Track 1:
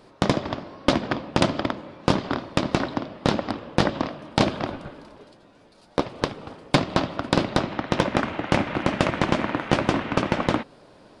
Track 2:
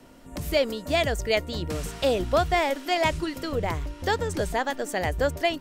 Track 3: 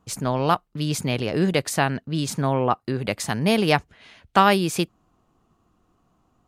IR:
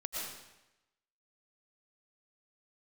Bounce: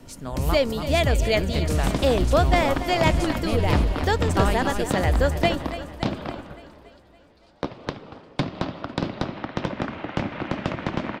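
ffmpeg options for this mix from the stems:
-filter_complex "[0:a]lowpass=5600,acrossover=split=290[link_01][link_02];[link_02]acompressor=threshold=-23dB:ratio=6[link_03];[link_01][link_03]amix=inputs=2:normalize=0,adelay=1650,volume=-3dB[link_04];[1:a]lowshelf=frequency=160:gain=10.5,volume=1dB,asplit=2[link_05][link_06];[link_06]volume=-13dB[link_07];[2:a]volume=-10dB,asplit=2[link_08][link_09];[link_09]volume=-7.5dB[link_10];[link_07][link_10]amix=inputs=2:normalize=0,aecho=0:1:283|566|849|1132|1415|1698|1981|2264|2547:1|0.59|0.348|0.205|0.121|0.0715|0.0422|0.0249|0.0147[link_11];[link_04][link_05][link_08][link_11]amix=inputs=4:normalize=0"

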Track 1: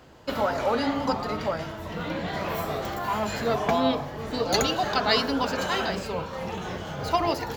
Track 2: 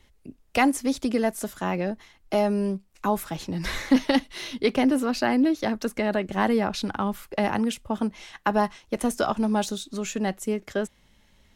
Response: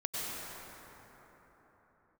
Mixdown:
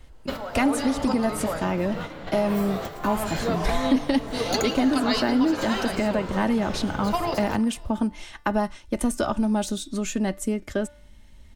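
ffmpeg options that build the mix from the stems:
-filter_complex "[0:a]volume=-0.5dB,asplit=3[link_01][link_02][link_03];[link_02]volume=-18dB[link_04];[link_03]volume=-18dB[link_05];[1:a]lowshelf=frequency=180:gain=11.5,aecho=1:1:3.3:0.34,volume=0.5dB,asplit=2[link_06][link_07];[link_07]apad=whole_len=333715[link_08];[link_01][link_08]sidechaingate=range=-13dB:threshold=-37dB:ratio=16:detection=peak[link_09];[2:a]atrim=start_sample=2205[link_10];[link_04][link_10]afir=irnorm=-1:irlink=0[link_11];[link_05]aecho=0:1:175|350|525|700|875|1050|1225|1400:1|0.54|0.292|0.157|0.085|0.0459|0.0248|0.0134[link_12];[link_09][link_06][link_11][link_12]amix=inputs=4:normalize=0,equalizer=frequency=8600:width=4.7:gain=6.5,bandreject=frequency=292.9:width_type=h:width=4,bandreject=frequency=585.8:width_type=h:width=4,bandreject=frequency=878.7:width_type=h:width=4,bandreject=frequency=1171.6:width_type=h:width=4,bandreject=frequency=1464.5:width_type=h:width=4,bandreject=frequency=1757.4:width_type=h:width=4,bandreject=frequency=2050.3:width_type=h:width=4,bandreject=frequency=2343.2:width_type=h:width=4,bandreject=frequency=2636.1:width_type=h:width=4,bandreject=frequency=2929:width_type=h:width=4,bandreject=frequency=3221.9:width_type=h:width=4,bandreject=frequency=3514.8:width_type=h:width=4,bandreject=frequency=3807.7:width_type=h:width=4,bandreject=frequency=4100.6:width_type=h:width=4,bandreject=frequency=4393.5:width_type=h:width=4,bandreject=frequency=4686.4:width_type=h:width=4,bandreject=frequency=4979.3:width_type=h:width=4,bandreject=frequency=5272.2:width_type=h:width=4,bandreject=frequency=5565.1:width_type=h:width=4,acompressor=threshold=-22dB:ratio=2"

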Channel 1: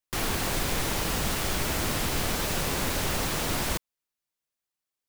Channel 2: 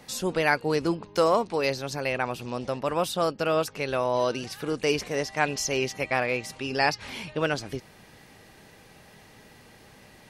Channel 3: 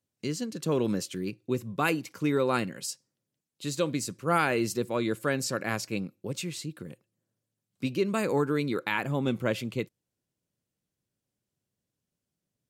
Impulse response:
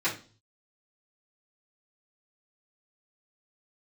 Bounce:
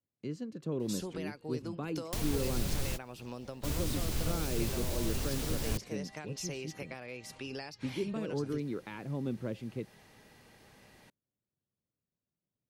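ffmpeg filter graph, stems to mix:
-filter_complex "[0:a]acrossover=split=130[link_01][link_02];[link_02]acompressor=threshold=-34dB:ratio=10[link_03];[link_01][link_03]amix=inputs=2:normalize=0,adelay=2000,volume=-1dB[link_04];[1:a]acompressor=threshold=-29dB:ratio=10,adelay=800,volume=-7dB[link_05];[2:a]lowpass=frequency=1100:poles=1,volume=-6dB,asplit=2[link_06][link_07];[link_07]apad=whole_len=312545[link_08];[link_04][link_08]sidechaingate=range=-30dB:threshold=-59dB:ratio=16:detection=peak[link_09];[link_09][link_05][link_06]amix=inputs=3:normalize=0,acrossover=split=450|3000[link_10][link_11][link_12];[link_11]acompressor=threshold=-47dB:ratio=3[link_13];[link_10][link_13][link_12]amix=inputs=3:normalize=0"

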